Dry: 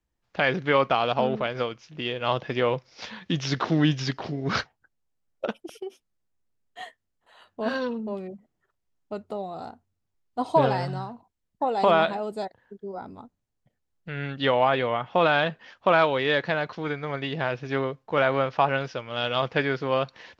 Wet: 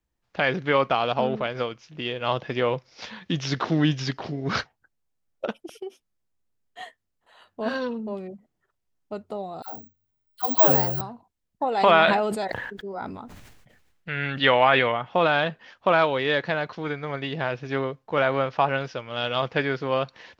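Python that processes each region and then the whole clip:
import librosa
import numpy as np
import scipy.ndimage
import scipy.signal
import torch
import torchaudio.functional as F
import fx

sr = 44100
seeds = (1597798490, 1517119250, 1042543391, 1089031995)

y = fx.chain(x, sr, fx.dispersion(late='lows', ms=124.0, hz=600.0),
    fx.resample_bad(factor=2, down='filtered', up='zero_stuff'), at=(9.62, 11.01))
y = fx.chain(y, sr, fx.peak_eq(hz=2100.0, db=8.5, octaves=1.8),
    fx.sustainer(db_per_s=35.0), at=(11.72, 14.92))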